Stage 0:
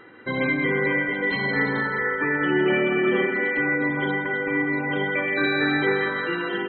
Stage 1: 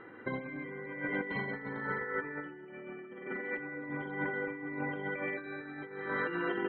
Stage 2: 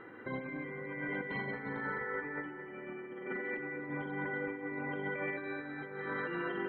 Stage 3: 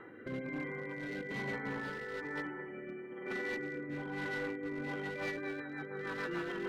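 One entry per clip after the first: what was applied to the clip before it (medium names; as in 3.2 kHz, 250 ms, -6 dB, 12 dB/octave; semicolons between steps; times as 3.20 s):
low-pass 2 kHz 12 dB/octave; compressor with a negative ratio -29 dBFS, ratio -0.5; trim -8 dB
peak limiter -28.5 dBFS, peak gain reduction 6.5 dB; bucket-brigade echo 219 ms, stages 4096, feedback 73%, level -12.5 dB
overload inside the chain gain 35 dB; rotary cabinet horn 1.1 Hz, later 6.7 Hz, at 4.68 s; trim +2.5 dB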